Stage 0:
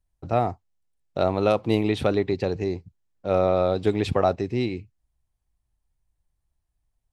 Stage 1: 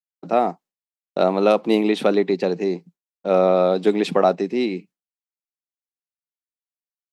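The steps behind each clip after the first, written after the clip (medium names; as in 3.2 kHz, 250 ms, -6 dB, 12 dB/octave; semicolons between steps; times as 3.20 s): elliptic high-pass 170 Hz, stop band 40 dB; expander -47 dBFS; trim +5 dB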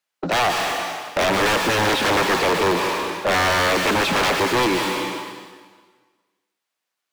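integer overflow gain 16 dB; plate-style reverb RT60 1.5 s, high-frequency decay 0.95×, pre-delay 110 ms, DRR 10 dB; overdrive pedal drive 28 dB, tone 2.7 kHz, clips at -12 dBFS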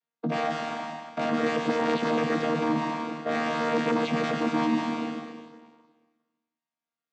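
vocoder on a held chord bare fifth, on D#3; trim -6 dB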